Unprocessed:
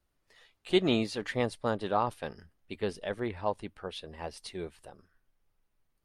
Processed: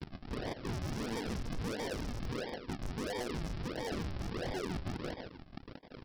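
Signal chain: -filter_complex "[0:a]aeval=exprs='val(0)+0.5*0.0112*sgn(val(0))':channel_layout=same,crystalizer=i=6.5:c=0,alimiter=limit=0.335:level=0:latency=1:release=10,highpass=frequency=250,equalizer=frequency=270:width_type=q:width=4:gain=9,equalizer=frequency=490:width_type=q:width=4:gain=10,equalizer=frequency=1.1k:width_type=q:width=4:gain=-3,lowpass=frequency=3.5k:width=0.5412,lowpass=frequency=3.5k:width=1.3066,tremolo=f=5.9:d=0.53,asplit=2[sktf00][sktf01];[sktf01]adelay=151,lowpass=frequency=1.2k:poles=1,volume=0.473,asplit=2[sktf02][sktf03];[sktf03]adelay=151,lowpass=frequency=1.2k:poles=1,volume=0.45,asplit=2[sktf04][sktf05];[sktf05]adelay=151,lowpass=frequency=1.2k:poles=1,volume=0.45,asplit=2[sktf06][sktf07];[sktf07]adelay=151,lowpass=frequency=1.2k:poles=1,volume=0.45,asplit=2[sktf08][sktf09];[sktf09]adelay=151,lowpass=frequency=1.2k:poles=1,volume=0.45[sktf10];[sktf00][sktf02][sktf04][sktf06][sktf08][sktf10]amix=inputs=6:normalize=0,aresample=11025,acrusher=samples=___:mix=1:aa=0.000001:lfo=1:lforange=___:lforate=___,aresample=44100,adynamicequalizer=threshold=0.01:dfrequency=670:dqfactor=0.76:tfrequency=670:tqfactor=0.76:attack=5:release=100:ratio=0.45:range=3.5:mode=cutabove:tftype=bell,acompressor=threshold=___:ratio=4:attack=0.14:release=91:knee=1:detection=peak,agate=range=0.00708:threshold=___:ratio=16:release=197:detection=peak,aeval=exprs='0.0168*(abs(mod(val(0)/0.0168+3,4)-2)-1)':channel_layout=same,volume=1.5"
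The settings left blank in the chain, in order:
16, 16, 1.5, 0.02, 0.00112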